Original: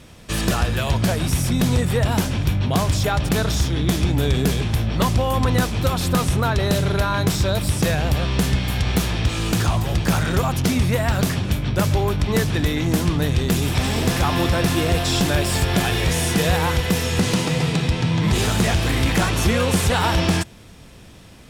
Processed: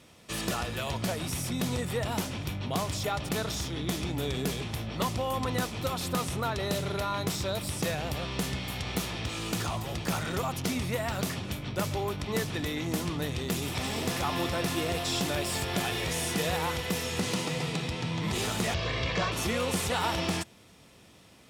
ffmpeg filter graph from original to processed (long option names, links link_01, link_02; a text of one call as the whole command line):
ffmpeg -i in.wav -filter_complex "[0:a]asettb=1/sr,asplit=3[link_01][link_02][link_03];[link_01]atrim=end=18.744[link_04];[link_02]atrim=start=18.74:end=19.32,asetpts=PTS-STARTPTS,afade=type=in:duration=0.004:curve=qsin,afade=type=out:start_time=0.576:duration=0.004:curve=qsin,lowpass=frequency=5300:width=0.5412,lowpass=frequency=5300:width=1.3066,aecho=1:1:1.8:0.67,atrim=end_sample=25578[link_05];[link_03]atrim=start=19.316[link_06];[link_04][link_05]acrossfade=duration=0.004:curve1=hsin:curve2=qsin[link_07];[link_07][link_06]acrossfade=duration=0.004:curve1=qsin:curve2=hsin,highpass=61,lowshelf=frequency=170:gain=-9,bandreject=frequency=1600:width=12,volume=-8dB" out.wav